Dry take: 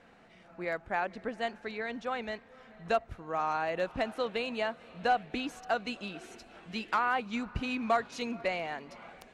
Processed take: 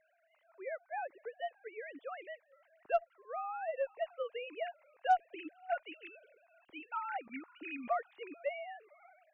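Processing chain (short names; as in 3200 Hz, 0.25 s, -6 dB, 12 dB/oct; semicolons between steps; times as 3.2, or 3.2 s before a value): sine-wave speech; added harmonics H 6 -33 dB, 8 -38 dB, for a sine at -12.5 dBFS; gain -6 dB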